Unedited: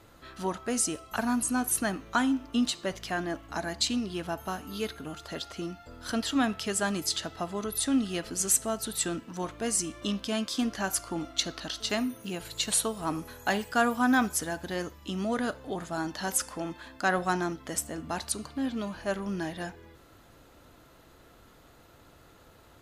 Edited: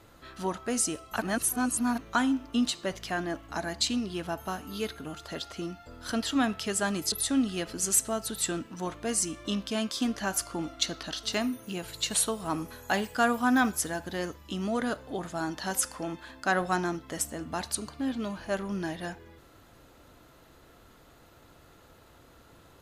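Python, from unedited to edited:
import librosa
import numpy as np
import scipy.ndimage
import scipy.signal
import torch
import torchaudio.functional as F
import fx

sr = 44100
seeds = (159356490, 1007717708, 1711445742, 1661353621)

y = fx.edit(x, sr, fx.reverse_span(start_s=1.22, length_s=0.76),
    fx.cut(start_s=7.12, length_s=0.57), tone=tone)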